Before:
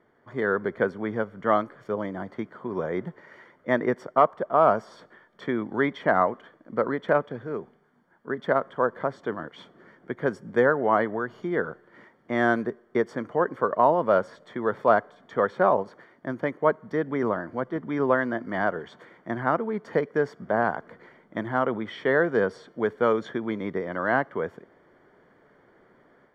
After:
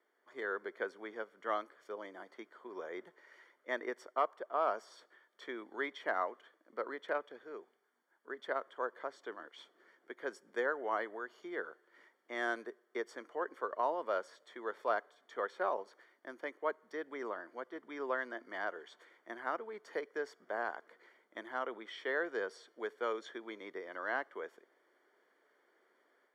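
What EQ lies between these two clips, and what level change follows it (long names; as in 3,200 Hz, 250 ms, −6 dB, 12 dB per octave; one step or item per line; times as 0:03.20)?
resonant band-pass 340 Hz, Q 1.8
first difference
spectral tilt +4.5 dB per octave
+17.5 dB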